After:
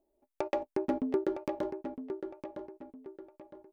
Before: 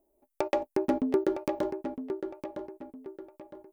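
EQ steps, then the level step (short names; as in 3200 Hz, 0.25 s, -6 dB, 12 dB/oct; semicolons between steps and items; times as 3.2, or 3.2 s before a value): high shelf 6800 Hz -9 dB; -4.0 dB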